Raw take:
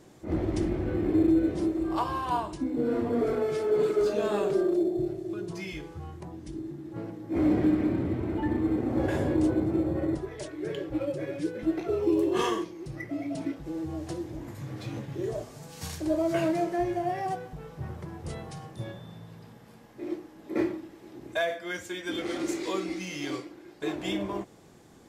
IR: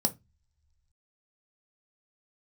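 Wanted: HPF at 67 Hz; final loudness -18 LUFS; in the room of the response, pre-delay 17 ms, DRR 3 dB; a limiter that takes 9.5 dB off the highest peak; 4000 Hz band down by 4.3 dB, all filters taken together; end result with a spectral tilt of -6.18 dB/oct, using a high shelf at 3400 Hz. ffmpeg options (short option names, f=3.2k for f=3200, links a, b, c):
-filter_complex "[0:a]highpass=67,highshelf=f=3.4k:g=4,equalizer=f=4k:t=o:g=-8.5,alimiter=limit=-24dB:level=0:latency=1,asplit=2[a][b];[1:a]atrim=start_sample=2205,adelay=17[c];[b][c]afir=irnorm=-1:irlink=0,volume=-9dB[d];[a][d]amix=inputs=2:normalize=0,volume=12dB"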